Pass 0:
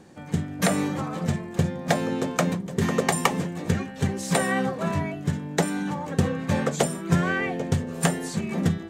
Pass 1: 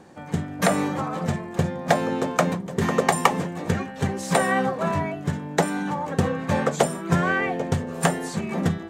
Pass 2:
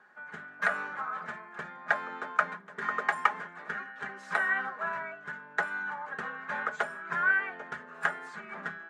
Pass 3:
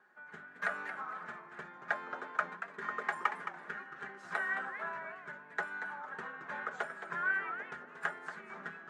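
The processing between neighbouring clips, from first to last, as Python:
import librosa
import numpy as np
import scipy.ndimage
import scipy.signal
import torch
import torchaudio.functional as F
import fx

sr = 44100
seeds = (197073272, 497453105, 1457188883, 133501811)

y1 = fx.peak_eq(x, sr, hz=900.0, db=6.5, octaves=2.1)
y1 = y1 * 10.0 ** (-1.0 / 20.0)
y2 = fx.bandpass_q(y1, sr, hz=1500.0, q=5.2)
y2 = y2 + 0.59 * np.pad(y2, (int(4.8 * sr / 1000.0), 0))[:len(y2)]
y2 = y2 * 10.0 ** (3.5 / 20.0)
y3 = fx.peak_eq(y2, sr, hz=360.0, db=5.0, octaves=0.42)
y3 = fx.echo_warbled(y3, sr, ms=225, feedback_pct=30, rate_hz=2.8, cents=218, wet_db=-9.5)
y3 = y3 * 10.0 ** (-7.0 / 20.0)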